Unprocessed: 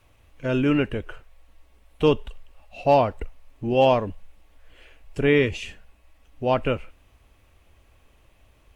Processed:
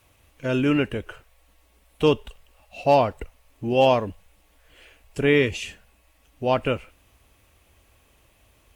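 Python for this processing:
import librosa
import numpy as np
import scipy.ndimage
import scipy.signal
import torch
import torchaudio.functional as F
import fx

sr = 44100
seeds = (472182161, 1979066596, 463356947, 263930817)

y = fx.highpass(x, sr, hz=55.0, slope=6)
y = fx.high_shelf(y, sr, hz=5300.0, db=9.0)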